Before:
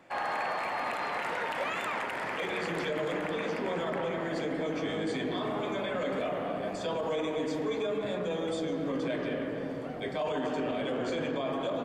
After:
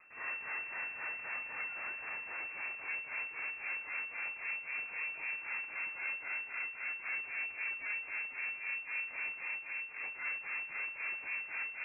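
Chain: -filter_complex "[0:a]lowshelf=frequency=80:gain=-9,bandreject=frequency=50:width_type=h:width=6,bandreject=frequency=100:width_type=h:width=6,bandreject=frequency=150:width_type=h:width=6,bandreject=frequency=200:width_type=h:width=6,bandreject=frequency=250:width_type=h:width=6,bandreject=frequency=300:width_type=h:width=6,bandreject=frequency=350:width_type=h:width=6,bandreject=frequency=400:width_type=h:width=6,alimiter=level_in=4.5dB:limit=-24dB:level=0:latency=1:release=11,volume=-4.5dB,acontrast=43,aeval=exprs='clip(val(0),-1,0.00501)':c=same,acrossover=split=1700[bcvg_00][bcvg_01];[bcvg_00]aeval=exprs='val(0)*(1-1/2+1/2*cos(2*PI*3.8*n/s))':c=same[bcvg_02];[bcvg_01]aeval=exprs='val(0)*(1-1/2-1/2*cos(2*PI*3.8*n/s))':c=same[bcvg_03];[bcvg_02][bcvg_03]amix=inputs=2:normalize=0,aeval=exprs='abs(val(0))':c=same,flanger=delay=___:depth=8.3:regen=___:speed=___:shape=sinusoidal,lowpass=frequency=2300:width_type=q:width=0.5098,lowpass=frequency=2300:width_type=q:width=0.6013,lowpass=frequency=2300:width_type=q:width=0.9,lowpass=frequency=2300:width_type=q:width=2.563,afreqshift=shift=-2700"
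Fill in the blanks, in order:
1.2, -40, 1.8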